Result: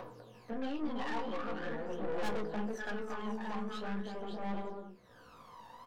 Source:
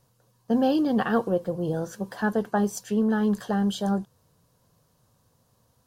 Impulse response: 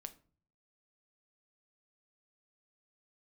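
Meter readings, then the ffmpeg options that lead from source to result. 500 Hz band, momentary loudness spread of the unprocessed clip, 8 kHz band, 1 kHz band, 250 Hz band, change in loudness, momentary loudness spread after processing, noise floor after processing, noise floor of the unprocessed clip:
−11.5 dB, 7 LU, −17.5 dB, −9.0 dB, −15.0 dB, −14.0 dB, 17 LU, −58 dBFS, −67 dBFS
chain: -filter_complex "[0:a]acrossover=split=290 3400:gain=0.0794 1 0.0708[link_01][link_02][link_03];[link_01][link_02][link_03]amix=inputs=3:normalize=0,aecho=1:1:330|561|722.7|835.9|915.1:0.631|0.398|0.251|0.158|0.1,asplit=2[link_04][link_05];[link_05]acompressor=threshold=-32dB:ratio=6,volume=0dB[link_06];[link_04][link_06]amix=inputs=2:normalize=0,flanger=delay=16:depth=3:speed=1,acompressor=mode=upward:threshold=-31dB:ratio=2.5,aphaser=in_gain=1:out_gain=1:delay=1.1:decay=0.74:speed=0.44:type=triangular,aeval=exprs='(tanh(25.1*val(0)+0.5)-tanh(0.5))/25.1':channel_layout=same[link_07];[1:a]atrim=start_sample=2205,asetrate=66150,aresample=44100[link_08];[link_07][link_08]afir=irnorm=-1:irlink=0,volume=1.5dB"

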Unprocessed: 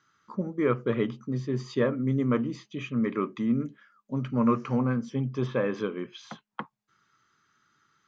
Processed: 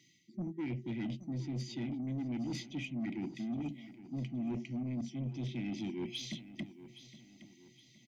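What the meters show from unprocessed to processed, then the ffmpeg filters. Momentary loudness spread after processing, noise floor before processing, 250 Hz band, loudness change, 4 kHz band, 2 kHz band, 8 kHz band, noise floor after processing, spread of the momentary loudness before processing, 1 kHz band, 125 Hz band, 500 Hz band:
14 LU, −77 dBFS, −9.0 dB, −11.0 dB, 0.0 dB, −11.0 dB, can't be measured, −64 dBFS, 14 LU, −18.5 dB, −8.5 dB, −18.5 dB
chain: -af "afftfilt=real='re*(1-between(b*sr/4096,370,1900))':imag='im*(1-between(b*sr/4096,370,1900))':win_size=4096:overlap=0.75,highpass=frequency=110:width=0.5412,highpass=frequency=110:width=1.3066,areverse,acompressor=threshold=-41dB:ratio=6,areverse,asoftclip=type=tanh:threshold=-40dB,aecho=1:1:817|1634|2451|3268:0.178|0.0729|0.0299|0.0123,volume=7.5dB"

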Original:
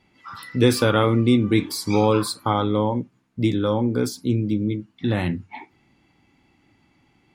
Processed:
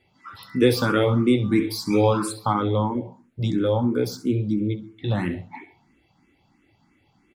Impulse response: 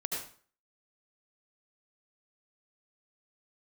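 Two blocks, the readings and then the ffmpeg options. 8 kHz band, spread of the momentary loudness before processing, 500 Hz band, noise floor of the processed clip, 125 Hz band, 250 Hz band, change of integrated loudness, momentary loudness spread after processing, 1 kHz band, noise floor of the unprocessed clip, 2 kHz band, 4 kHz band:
−4.0 dB, 13 LU, −0.5 dB, −65 dBFS, −1.5 dB, −1.5 dB, −1.0 dB, 11 LU, −1.5 dB, −63 dBFS, −1.5 dB, −3.0 dB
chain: -filter_complex "[0:a]aecho=1:1:67|134|201:0.188|0.0697|0.0258,asplit=2[link_01][link_02];[1:a]atrim=start_sample=2205,afade=type=out:start_time=0.35:duration=0.01,atrim=end_sample=15876,lowpass=2100[link_03];[link_02][link_03]afir=irnorm=-1:irlink=0,volume=-15dB[link_04];[link_01][link_04]amix=inputs=2:normalize=0,asplit=2[link_05][link_06];[link_06]afreqshift=3[link_07];[link_05][link_07]amix=inputs=2:normalize=1"

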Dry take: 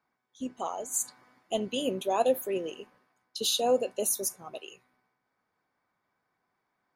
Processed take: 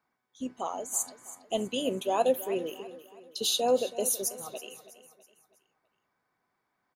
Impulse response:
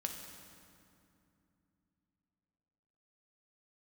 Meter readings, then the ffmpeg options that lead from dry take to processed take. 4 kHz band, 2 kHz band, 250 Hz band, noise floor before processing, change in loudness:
0.0 dB, 0.0 dB, 0.0 dB, −81 dBFS, 0.0 dB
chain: -af "aecho=1:1:325|650|975|1300:0.168|0.0722|0.031|0.0133"

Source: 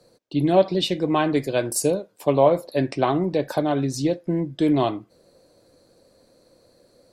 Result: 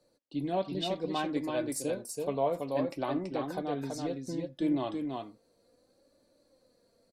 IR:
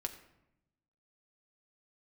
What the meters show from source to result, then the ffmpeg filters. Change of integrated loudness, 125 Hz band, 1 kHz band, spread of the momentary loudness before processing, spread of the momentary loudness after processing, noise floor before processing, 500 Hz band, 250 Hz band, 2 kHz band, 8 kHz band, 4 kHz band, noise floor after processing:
−11.5 dB, −14.0 dB, −10.5 dB, 7 LU, 6 LU, −60 dBFS, −12.0 dB, −10.0 dB, −11.0 dB, −11.0 dB, −10.5 dB, −71 dBFS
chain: -af "aecho=1:1:331:0.631,flanger=delay=3.4:depth=1:regen=46:speed=0.64:shape=sinusoidal,volume=-8.5dB"

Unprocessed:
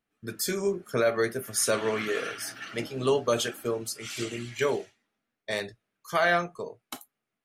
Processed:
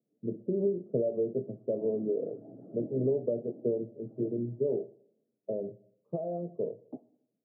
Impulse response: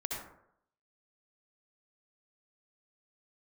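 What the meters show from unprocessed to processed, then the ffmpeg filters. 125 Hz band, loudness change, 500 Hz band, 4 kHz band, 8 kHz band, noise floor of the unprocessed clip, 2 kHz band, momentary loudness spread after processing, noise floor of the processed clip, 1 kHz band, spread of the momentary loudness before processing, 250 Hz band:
−0.5 dB, −4.5 dB, −2.5 dB, below −40 dB, below −40 dB, −85 dBFS, below −40 dB, 12 LU, −83 dBFS, below −15 dB, 15 LU, +0.5 dB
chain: -filter_complex "[0:a]acompressor=threshold=-30dB:ratio=6,asuperpass=centerf=270:order=12:qfactor=0.55,asplit=2[link_01][link_02];[1:a]atrim=start_sample=2205[link_03];[link_02][link_03]afir=irnorm=-1:irlink=0,volume=-21dB[link_04];[link_01][link_04]amix=inputs=2:normalize=0,volume=4.5dB"

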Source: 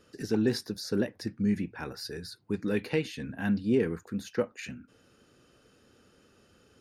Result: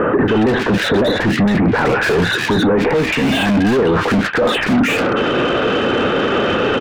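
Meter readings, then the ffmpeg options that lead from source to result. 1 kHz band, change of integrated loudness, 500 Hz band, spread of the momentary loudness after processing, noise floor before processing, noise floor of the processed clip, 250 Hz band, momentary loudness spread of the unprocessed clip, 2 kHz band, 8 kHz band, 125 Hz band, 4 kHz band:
+29.0 dB, +16.5 dB, +18.5 dB, 2 LU, −64 dBFS, −19 dBFS, +16.0 dB, 11 LU, +24.5 dB, +14.0 dB, +16.5 dB, +21.5 dB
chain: -filter_complex "[0:a]areverse,acompressor=threshold=-35dB:ratio=20,areverse,aresample=8000,aresample=44100,asplit=2[link_01][link_02];[link_02]highpass=frequency=720:poles=1,volume=37dB,asoftclip=type=tanh:threshold=-28dB[link_03];[link_01][link_03]amix=inputs=2:normalize=0,lowpass=frequency=1400:poles=1,volume=-6dB,acrossover=split=1700[link_04][link_05];[link_05]adelay=280[link_06];[link_04][link_06]amix=inputs=2:normalize=0,alimiter=level_in=36dB:limit=-1dB:release=50:level=0:latency=1,volume=-7.5dB"

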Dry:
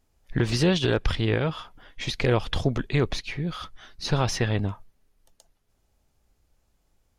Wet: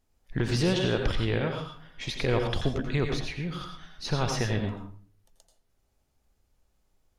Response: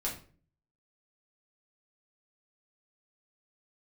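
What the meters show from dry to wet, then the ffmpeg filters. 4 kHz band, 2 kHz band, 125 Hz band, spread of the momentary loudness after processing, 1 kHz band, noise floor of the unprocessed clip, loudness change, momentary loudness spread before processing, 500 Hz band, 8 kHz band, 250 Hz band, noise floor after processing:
−3.0 dB, −3.0 dB, −3.5 dB, 13 LU, −2.5 dB, −70 dBFS, −3.0 dB, 12 LU, −2.5 dB, −3.0 dB, −3.0 dB, −72 dBFS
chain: -filter_complex "[0:a]asplit=2[link_01][link_02];[1:a]atrim=start_sample=2205,lowshelf=frequency=150:gain=-8.5,adelay=84[link_03];[link_02][link_03]afir=irnorm=-1:irlink=0,volume=-6.5dB[link_04];[link_01][link_04]amix=inputs=2:normalize=0,volume=-4.5dB"

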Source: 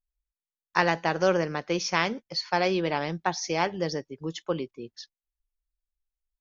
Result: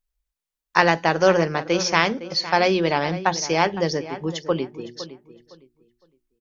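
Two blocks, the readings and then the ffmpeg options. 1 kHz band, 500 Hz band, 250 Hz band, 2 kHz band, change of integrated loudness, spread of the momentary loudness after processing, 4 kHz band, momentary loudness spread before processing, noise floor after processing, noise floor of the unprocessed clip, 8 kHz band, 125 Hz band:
+6.5 dB, +6.5 dB, +6.0 dB, +6.5 dB, +6.5 dB, 12 LU, +6.5 dB, 11 LU, below −85 dBFS, below −85 dBFS, can't be measured, +6.0 dB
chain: -filter_complex "[0:a]bandreject=frequency=60:width_type=h:width=6,bandreject=frequency=120:width_type=h:width=6,bandreject=frequency=180:width_type=h:width=6,bandreject=frequency=240:width_type=h:width=6,bandreject=frequency=300:width_type=h:width=6,bandreject=frequency=360:width_type=h:width=6,asplit=2[link_01][link_02];[link_02]adelay=510,lowpass=frequency=3100:poles=1,volume=-14dB,asplit=2[link_03][link_04];[link_04]adelay=510,lowpass=frequency=3100:poles=1,volume=0.25,asplit=2[link_05][link_06];[link_06]adelay=510,lowpass=frequency=3100:poles=1,volume=0.25[link_07];[link_01][link_03][link_05][link_07]amix=inputs=4:normalize=0,volume=6.5dB"

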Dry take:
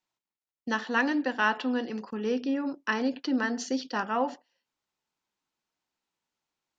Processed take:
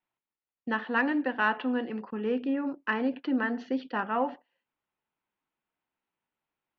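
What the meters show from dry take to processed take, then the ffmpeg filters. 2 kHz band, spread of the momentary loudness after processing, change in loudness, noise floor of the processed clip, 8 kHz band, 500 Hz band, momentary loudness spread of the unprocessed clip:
−0.5 dB, 6 LU, −0.5 dB, below −85 dBFS, can't be measured, −0.5 dB, 7 LU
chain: -af "lowpass=frequency=2900:width=0.5412,lowpass=frequency=2900:width=1.3066,acontrast=88,volume=-7.5dB"

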